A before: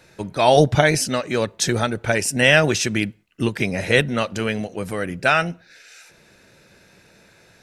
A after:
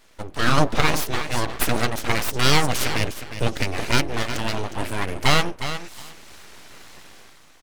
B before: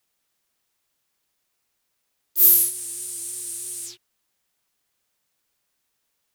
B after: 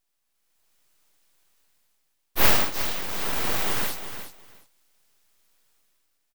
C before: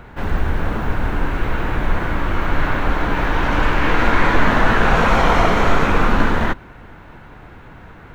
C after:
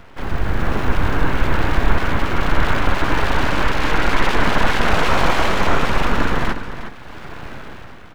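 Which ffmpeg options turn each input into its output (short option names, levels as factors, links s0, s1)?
-filter_complex "[0:a]dynaudnorm=f=100:g=11:m=3.76,bandreject=f=109.8:t=h:w=4,bandreject=f=219.6:t=h:w=4,bandreject=f=329.4:t=h:w=4,bandreject=f=439.2:t=h:w=4,bandreject=f=549:t=h:w=4,bandreject=f=658.8:t=h:w=4,bandreject=f=768.6:t=h:w=4,bandreject=f=878.4:t=h:w=4,asplit=2[s0][s1];[s1]aecho=0:1:360|720:0.299|0.0508[s2];[s0][s2]amix=inputs=2:normalize=0,aeval=exprs='abs(val(0))':c=same,volume=0.841"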